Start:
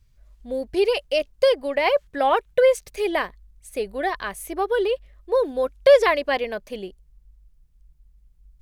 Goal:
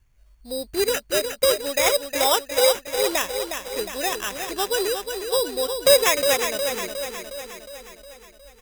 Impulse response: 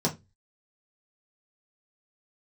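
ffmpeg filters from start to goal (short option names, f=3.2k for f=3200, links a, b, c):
-filter_complex "[0:a]asplit=2[a][b];[b]aecho=0:1:361|722|1083|1444|1805|2166|2527:0.447|0.259|0.15|0.0872|0.0505|0.0293|0.017[c];[a][c]amix=inputs=2:normalize=0,acrusher=samples=10:mix=1:aa=0.000001,highshelf=f=2.5k:g=9.5,volume=-3.5dB"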